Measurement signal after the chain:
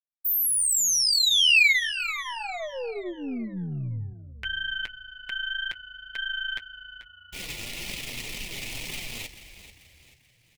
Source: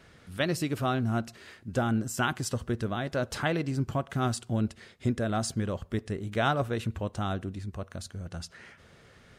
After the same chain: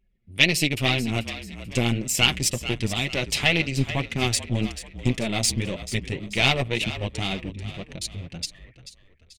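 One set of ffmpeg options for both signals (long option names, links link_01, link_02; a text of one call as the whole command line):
ffmpeg -i in.wav -filter_complex "[0:a]anlmdn=0.251,bandreject=frequency=1600:width=9.7,flanger=delay=4.5:depth=4.6:regen=-15:speed=1.9:shape=triangular,aeval=exprs='0.141*(cos(1*acos(clip(val(0)/0.141,-1,1)))-cos(1*PI/2))+0.0224*(cos(4*acos(clip(val(0)/0.141,-1,1)))-cos(4*PI/2))':channel_layout=same,highshelf=frequency=1800:width_type=q:width=3:gain=9.5,asplit=2[link_01][link_02];[link_02]asplit=4[link_03][link_04][link_05][link_06];[link_03]adelay=437,afreqshift=-44,volume=-13dB[link_07];[link_04]adelay=874,afreqshift=-88,volume=-20.5dB[link_08];[link_05]adelay=1311,afreqshift=-132,volume=-28.1dB[link_09];[link_06]adelay=1748,afreqshift=-176,volume=-35.6dB[link_10];[link_07][link_08][link_09][link_10]amix=inputs=4:normalize=0[link_11];[link_01][link_11]amix=inputs=2:normalize=0,volume=5.5dB" out.wav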